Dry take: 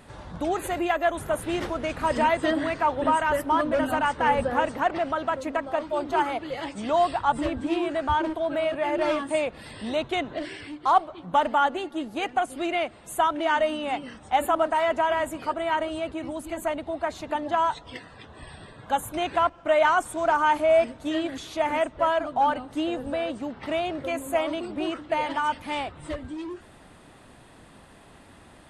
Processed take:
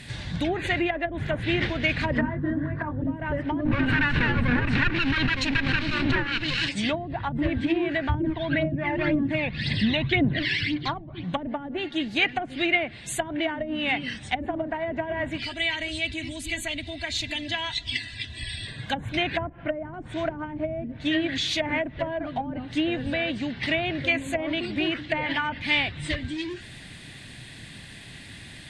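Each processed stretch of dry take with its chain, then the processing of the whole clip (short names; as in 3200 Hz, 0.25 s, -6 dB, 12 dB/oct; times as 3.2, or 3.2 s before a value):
2.18–3.02 LPF 11000 Hz + band shelf 1300 Hz +13 dB 1.1 oct + doubler 20 ms -5 dB
3.65–6.69 minimum comb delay 0.72 ms + backwards sustainer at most 31 dB/s
8.14–11.24 LPF 6600 Hz 24 dB/oct + phaser 1.9 Hz, delay 1.2 ms, feedback 55% + bell 170 Hz +5.5 dB 1.1 oct
15.38–18.67 band shelf 670 Hz -8.5 dB 2.9 oct + compressor 1.5:1, threshold -41 dBFS + comb 3 ms, depth 90%
19.37–19.94 LPF 1600 Hz + upward compressor, threshold -35 dBFS
whole clip: notch 1300 Hz, Q 7.1; treble ducked by the level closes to 320 Hz, closed at -18 dBFS; graphic EQ 125/500/1000/2000/4000/8000 Hz +9/-6/-10/+10/+10/+4 dB; gain +4 dB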